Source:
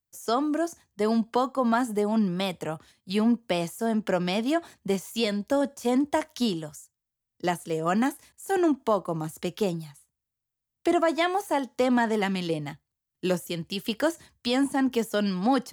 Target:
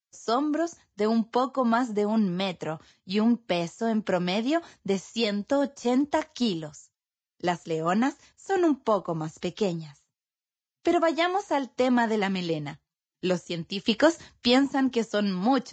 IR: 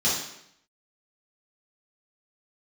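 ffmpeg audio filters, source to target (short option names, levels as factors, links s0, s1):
-filter_complex "[0:a]asplit=3[s0][s1][s2];[s0]afade=t=out:st=13.86:d=0.02[s3];[s1]acontrast=29,afade=t=in:st=13.86:d=0.02,afade=t=out:st=14.58:d=0.02[s4];[s2]afade=t=in:st=14.58:d=0.02[s5];[s3][s4][s5]amix=inputs=3:normalize=0" -ar 16000 -c:a libvorbis -b:a 32k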